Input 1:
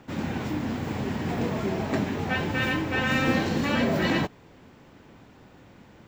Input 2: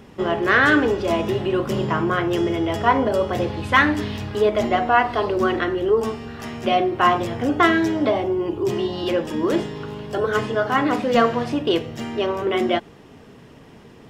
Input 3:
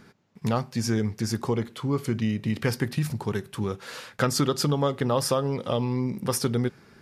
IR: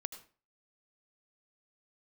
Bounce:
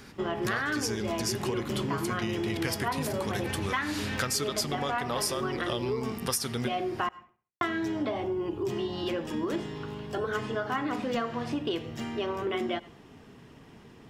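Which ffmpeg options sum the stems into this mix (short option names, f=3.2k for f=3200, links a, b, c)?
-filter_complex "[0:a]highshelf=f=3.2k:t=q:w=3:g=-10,asoftclip=type=tanh:threshold=-23dB,adelay=1150,volume=-9.5dB,asplit=2[a][b];[b]volume=-9dB[c];[1:a]equalizer=f=540:w=2.3:g=-4.5,volume=-7.5dB,asplit=3[d][e][f];[d]atrim=end=7.09,asetpts=PTS-STARTPTS,afade=t=out:st=7.086:d=0.004:c=hsin[g];[e]atrim=start=7.09:end=7.61,asetpts=PTS-STARTPTS,volume=0[h];[f]atrim=start=7.61,asetpts=PTS-STARTPTS,afade=t=in:d=0.004:c=hsin[i];[g][h][i]concat=n=3:v=0:a=1,asplit=2[j][k];[k]volume=-9dB[l];[2:a]tiltshelf=f=1.4k:g=-7,volume=1dB,asplit=2[m][n];[n]volume=-13.5dB[o];[3:a]atrim=start_sample=2205[p];[l][o]amix=inputs=2:normalize=0[q];[q][p]afir=irnorm=-1:irlink=0[r];[c]aecho=0:1:69|138|207|276|345:1|0.35|0.122|0.0429|0.015[s];[a][j][m][r][s]amix=inputs=5:normalize=0,acompressor=threshold=-27dB:ratio=6"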